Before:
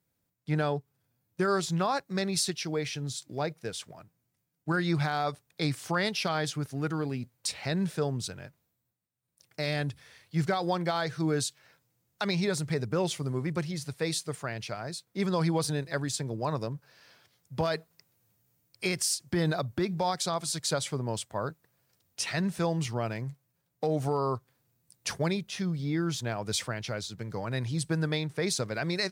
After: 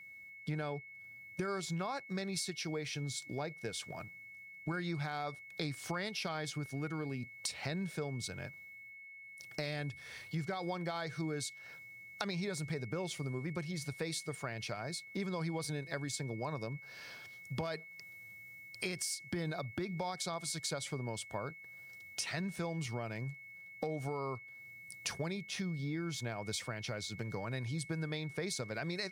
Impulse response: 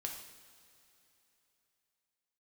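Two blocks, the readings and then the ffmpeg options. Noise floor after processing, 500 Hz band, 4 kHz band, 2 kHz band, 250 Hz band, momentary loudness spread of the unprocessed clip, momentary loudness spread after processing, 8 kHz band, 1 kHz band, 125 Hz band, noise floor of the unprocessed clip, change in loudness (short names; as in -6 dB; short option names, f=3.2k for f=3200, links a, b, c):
-53 dBFS, -9.0 dB, -7.5 dB, -5.5 dB, -8.5 dB, 9 LU, 12 LU, -7.5 dB, -9.5 dB, -8.0 dB, -79 dBFS, -8.5 dB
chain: -af "acompressor=threshold=-45dB:ratio=4,aeval=exprs='val(0)+0.00158*sin(2*PI*2200*n/s)':c=same,volume=6dB"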